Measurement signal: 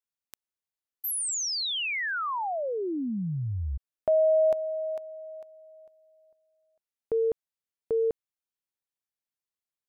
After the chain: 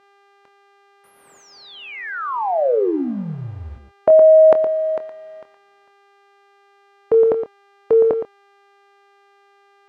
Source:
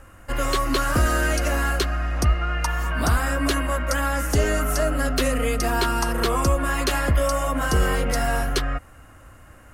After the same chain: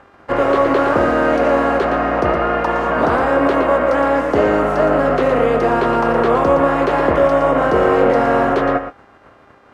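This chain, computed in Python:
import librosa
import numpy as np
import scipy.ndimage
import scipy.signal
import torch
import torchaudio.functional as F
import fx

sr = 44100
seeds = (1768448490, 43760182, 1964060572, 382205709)

p1 = fx.spec_flatten(x, sr, power=0.58)
p2 = p1 + 10.0 ** (-9.0 / 20.0) * np.pad(p1, (int(116 * sr / 1000.0), 0))[:len(p1)]
p3 = fx.over_compress(p2, sr, threshold_db=-22.0, ratio=-1.0)
p4 = p2 + (p3 * 10.0 ** (-1.5 / 20.0))
p5 = np.sign(p4) * np.maximum(np.abs(p4) - 10.0 ** (-44.0 / 20.0), 0.0)
p6 = fx.dmg_buzz(p5, sr, base_hz=400.0, harmonics=27, level_db=-50.0, tilt_db=0, odd_only=False)
p7 = fx.doubler(p6, sr, ms=25.0, db=-13.0)
p8 = (np.kron(p7[::2], np.eye(2)[0]) * 2)[:len(p7)]
p9 = scipy.signal.sosfilt(scipy.signal.butter(2, 1200.0, 'lowpass', fs=sr, output='sos'), p8)
p10 = fx.dynamic_eq(p9, sr, hz=480.0, q=1.0, threshold_db=-34.0, ratio=4.0, max_db=7)
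p11 = fx.highpass(p10, sr, hz=270.0, slope=6)
y = p11 * 10.0 ** (3.5 / 20.0)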